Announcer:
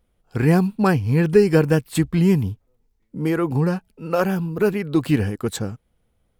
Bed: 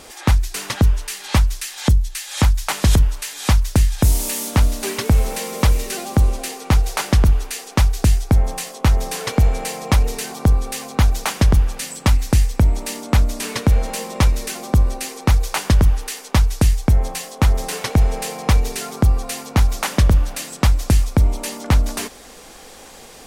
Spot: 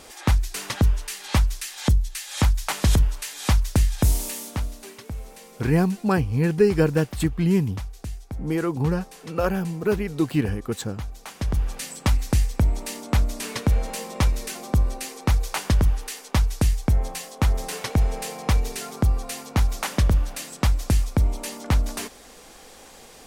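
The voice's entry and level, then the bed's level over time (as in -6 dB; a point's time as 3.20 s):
5.25 s, -3.5 dB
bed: 4.10 s -4.5 dB
5.00 s -19 dB
11.19 s -19 dB
11.71 s -5.5 dB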